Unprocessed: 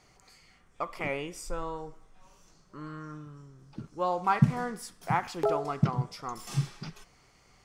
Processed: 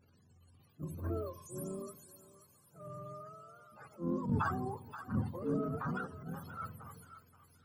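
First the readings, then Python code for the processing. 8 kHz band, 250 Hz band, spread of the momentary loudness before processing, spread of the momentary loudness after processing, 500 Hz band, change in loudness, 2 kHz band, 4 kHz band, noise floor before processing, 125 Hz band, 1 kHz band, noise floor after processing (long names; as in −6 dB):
−9.0 dB, −4.0 dB, 19 LU, 21 LU, −8.0 dB, −8.0 dB, −8.5 dB, below −15 dB, −62 dBFS, −8.5 dB, −10.5 dB, −67 dBFS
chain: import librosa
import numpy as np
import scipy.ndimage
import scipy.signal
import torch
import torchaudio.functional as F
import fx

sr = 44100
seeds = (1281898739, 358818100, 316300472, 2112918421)

y = fx.octave_mirror(x, sr, pivot_hz=430.0)
y = fx.spec_repair(y, sr, seeds[0], start_s=1.39, length_s=0.4, low_hz=830.0, high_hz=5400.0, source='before')
y = fx.transient(y, sr, attack_db=-10, sustain_db=6)
y = fx.echo_thinned(y, sr, ms=529, feedback_pct=33, hz=1200.0, wet_db=-9.5)
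y = y * 10.0 ** (-4.5 / 20.0)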